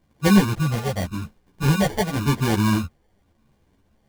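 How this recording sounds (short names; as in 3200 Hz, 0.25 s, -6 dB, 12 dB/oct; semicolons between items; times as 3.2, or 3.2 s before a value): a quantiser's noise floor 12-bit, dither triangular; phasing stages 8, 0.9 Hz, lowest notch 290–1000 Hz; aliases and images of a low sample rate 1300 Hz, jitter 0%; a shimmering, thickened sound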